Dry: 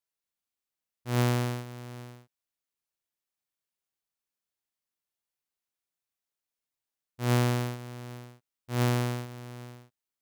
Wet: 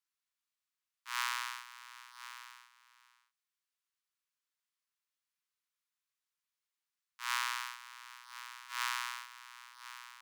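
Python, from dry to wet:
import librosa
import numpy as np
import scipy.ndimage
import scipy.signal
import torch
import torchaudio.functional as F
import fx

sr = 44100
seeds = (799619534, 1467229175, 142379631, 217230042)

y = scipy.signal.sosfilt(scipy.signal.butter(12, 960.0, 'highpass', fs=sr, output='sos'), x)
y = fx.high_shelf(y, sr, hz=9400.0, db=-8.0)
y = y + 10.0 ** (-13.5 / 20.0) * np.pad(y, (int(1049 * sr / 1000.0), 0))[:len(y)]
y = y * 10.0 ** (1.0 / 20.0)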